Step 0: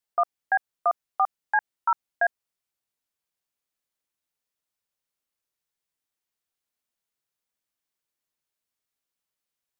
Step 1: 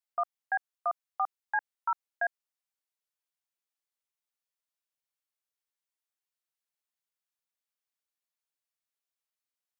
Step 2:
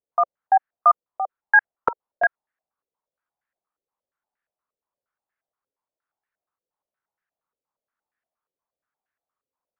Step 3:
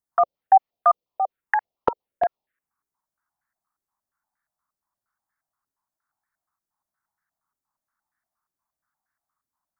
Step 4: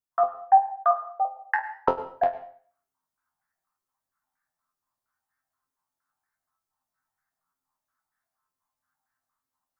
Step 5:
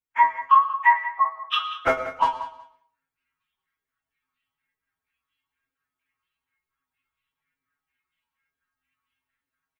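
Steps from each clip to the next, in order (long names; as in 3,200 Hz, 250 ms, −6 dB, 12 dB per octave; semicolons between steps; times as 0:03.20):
high-pass filter 590 Hz; level −6.5 dB
low-pass on a step sequencer 8.5 Hz 480–1,700 Hz; level +6 dB
phaser swept by the level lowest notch 490 Hz, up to 1,600 Hz, full sweep at −23.5 dBFS; hard clipping −11.5 dBFS, distortion −40 dB; level +6 dB
convolution reverb RT60 0.50 s, pre-delay 92 ms, DRR 13.5 dB; speech leveller 2 s; resonators tuned to a chord F2 fifth, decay 0.21 s; level +5.5 dB
partials spread apart or drawn together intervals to 130%; repeating echo 185 ms, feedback 18%, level −14 dB; level +6.5 dB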